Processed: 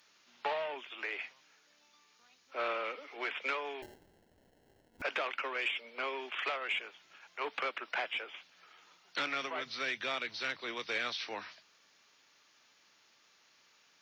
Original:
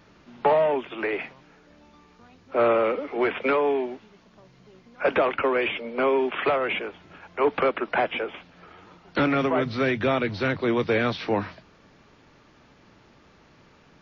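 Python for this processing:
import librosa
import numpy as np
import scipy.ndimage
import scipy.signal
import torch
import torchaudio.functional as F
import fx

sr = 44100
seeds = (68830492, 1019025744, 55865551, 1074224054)

y = fx.cheby_harmonics(x, sr, harmonics=(3,), levels_db=(-21,), full_scale_db=-10.5)
y = np.diff(y, prepend=0.0)
y = fx.sample_hold(y, sr, seeds[0], rate_hz=1200.0, jitter_pct=0, at=(3.82, 5.02))
y = y * 10.0 ** (6.0 / 20.0)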